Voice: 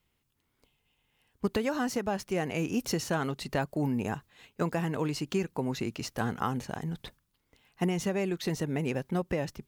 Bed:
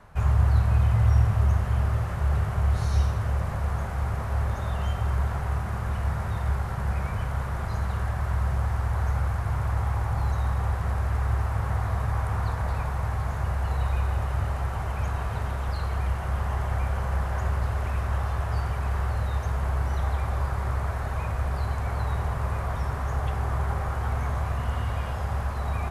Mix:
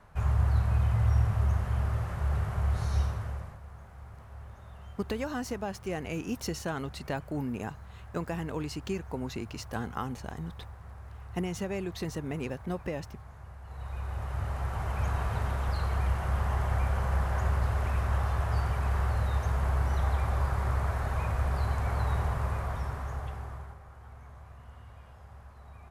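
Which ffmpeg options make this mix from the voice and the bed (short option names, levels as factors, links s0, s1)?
-filter_complex "[0:a]adelay=3550,volume=0.631[s0];[1:a]volume=4.47,afade=t=out:st=3:d=0.59:silence=0.188365,afade=t=in:st=13.64:d=1.48:silence=0.125893,afade=t=out:st=22.18:d=1.6:silence=0.1[s1];[s0][s1]amix=inputs=2:normalize=0"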